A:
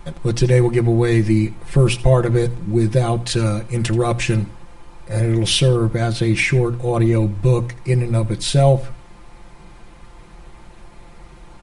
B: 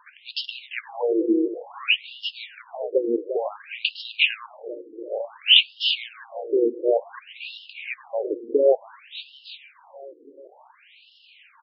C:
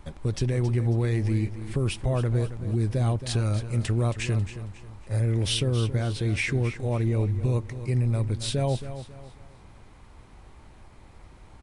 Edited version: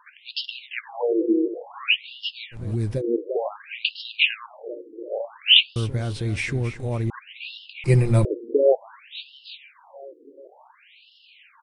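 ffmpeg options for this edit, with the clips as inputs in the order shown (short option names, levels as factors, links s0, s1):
-filter_complex "[2:a]asplit=2[s0][s1];[1:a]asplit=4[s2][s3][s4][s5];[s2]atrim=end=2.57[s6];[s0]atrim=start=2.51:end=3.02[s7];[s3]atrim=start=2.96:end=5.762[s8];[s1]atrim=start=5.758:end=7.102[s9];[s4]atrim=start=7.098:end=7.842[s10];[0:a]atrim=start=7.838:end=8.252[s11];[s5]atrim=start=8.248[s12];[s6][s7]acrossfade=d=0.06:c1=tri:c2=tri[s13];[s13][s8]acrossfade=d=0.06:c1=tri:c2=tri[s14];[s14][s9]acrossfade=d=0.004:c1=hsin:c2=hsin[s15];[s15][s10]acrossfade=d=0.004:c1=hsin:c2=hsin[s16];[s16][s11]acrossfade=d=0.004:c1=hsin:c2=hsin[s17];[s17][s12]acrossfade=d=0.004:c1=hsin:c2=hsin"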